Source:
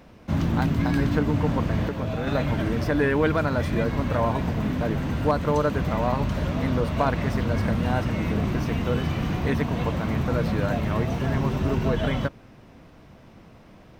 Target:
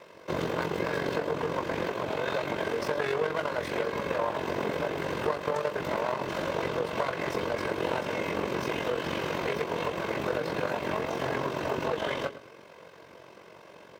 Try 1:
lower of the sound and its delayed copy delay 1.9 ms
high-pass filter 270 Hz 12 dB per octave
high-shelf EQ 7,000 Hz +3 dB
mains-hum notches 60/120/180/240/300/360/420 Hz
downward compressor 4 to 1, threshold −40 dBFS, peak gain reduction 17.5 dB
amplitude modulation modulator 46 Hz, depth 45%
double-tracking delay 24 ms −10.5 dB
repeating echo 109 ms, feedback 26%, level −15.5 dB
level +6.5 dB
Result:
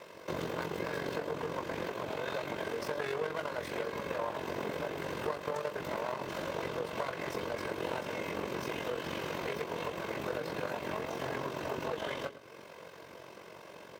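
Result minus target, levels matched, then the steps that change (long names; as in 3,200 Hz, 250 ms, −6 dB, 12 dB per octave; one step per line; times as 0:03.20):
downward compressor: peak gain reduction +6.5 dB; 8,000 Hz band +3.0 dB
change: high-shelf EQ 7,000 Hz −3.5 dB
change: downward compressor 4 to 1, threshold −31.5 dBFS, peak gain reduction 11 dB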